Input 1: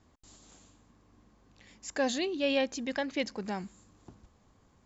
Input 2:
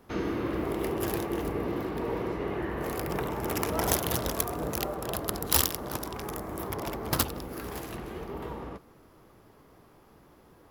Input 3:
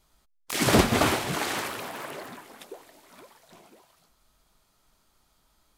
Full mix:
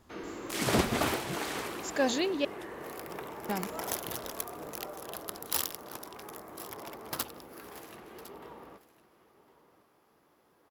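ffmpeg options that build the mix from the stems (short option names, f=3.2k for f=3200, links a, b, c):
-filter_complex "[0:a]volume=1.5dB,asplit=3[a][b][c];[a]atrim=end=2.45,asetpts=PTS-STARTPTS,afade=t=out:st=2.446:d=0.004:c=hsin[d];[b]atrim=start=2.45:end=3.49,asetpts=PTS-STARTPTS,volume=0[e];[c]atrim=start=3.49,asetpts=PTS-STARTPTS,afade=t=in:d=0.004:c=hsin[f];[d][e][f]concat=n=3:v=0:a=1[g];[1:a]highpass=f=400:p=1,volume=-7dB,asplit=2[h][i];[i]volume=-17dB[j];[2:a]bandreject=f=50:t=h:w=6,bandreject=f=100:t=h:w=6,volume=-7dB[k];[j]aecho=0:1:1056:1[l];[g][h][k][l]amix=inputs=4:normalize=0"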